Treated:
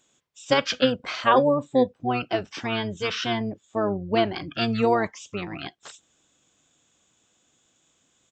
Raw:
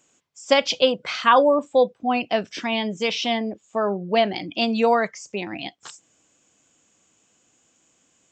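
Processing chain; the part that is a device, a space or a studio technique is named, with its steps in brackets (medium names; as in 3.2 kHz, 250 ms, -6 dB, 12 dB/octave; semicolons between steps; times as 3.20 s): octave pedal (harmony voices -12 st -5 dB); trim -4 dB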